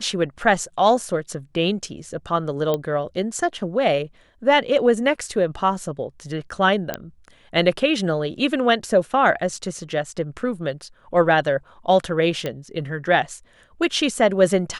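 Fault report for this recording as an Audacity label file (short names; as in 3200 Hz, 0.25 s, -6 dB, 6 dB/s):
2.740000	2.740000	pop -10 dBFS
6.940000	6.940000	pop -9 dBFS
12.460000	12.460000	pop -13 dBFS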